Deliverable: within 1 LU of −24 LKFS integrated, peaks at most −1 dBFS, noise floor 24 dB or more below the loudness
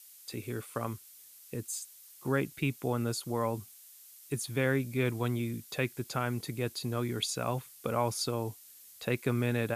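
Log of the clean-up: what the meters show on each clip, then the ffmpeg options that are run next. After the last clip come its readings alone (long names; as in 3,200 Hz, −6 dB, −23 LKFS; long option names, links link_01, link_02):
background noise floor −55 dBFS; target noise floor −58 dBFS; integrated loudness −34.0 LKFS; sample peak −15.5 dBFS; target loudness −24.0 LKFS
→ -af "afftdn=noise_reduction=6:noise_floor=-55"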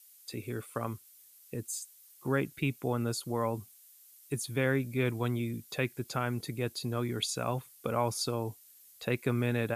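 background noise floor −58 dBFS; integrated loudness −34.0 LKFS; sample peak −15.5 dBFS; target loudness −24.0 LKFS
→ -af "volume=10dB"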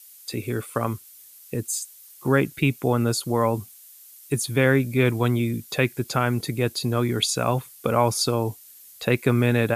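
integrated loudness −24.0 LKFS; sample peak −5.5 dBFS; background noise floor −48 dBFS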